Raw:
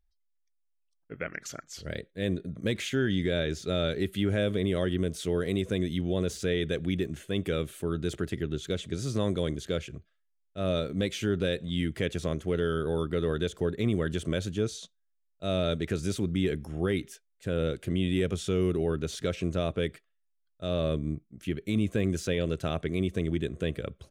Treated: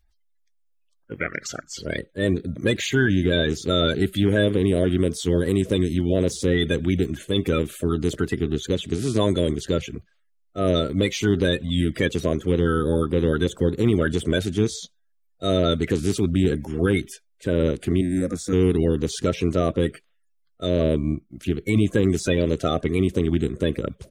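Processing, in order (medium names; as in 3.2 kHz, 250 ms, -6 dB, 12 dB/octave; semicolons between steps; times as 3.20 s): coarse spectral quantiser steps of 30 dB; 18.01–18.53 s: static phaser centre 610 Hz, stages 8; trim +8.5 dB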